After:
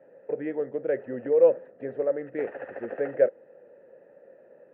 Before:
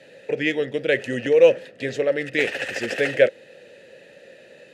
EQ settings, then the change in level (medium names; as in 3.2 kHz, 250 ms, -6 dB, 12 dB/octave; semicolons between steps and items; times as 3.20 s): low-pass 1.2 kHz 24 dB/octave; peaking EQ 91 Hz -10.5 dB 2.7 oct; -3.0 dB